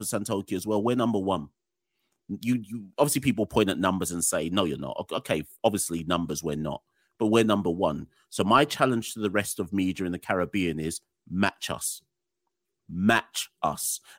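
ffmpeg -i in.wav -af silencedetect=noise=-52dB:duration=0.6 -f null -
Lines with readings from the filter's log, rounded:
silence_start: 1.48
silence_end: 2.29 | silence_duration: 0.81
silence_start: 11.99
silence_end: 12.89 | silence_duration: 0.90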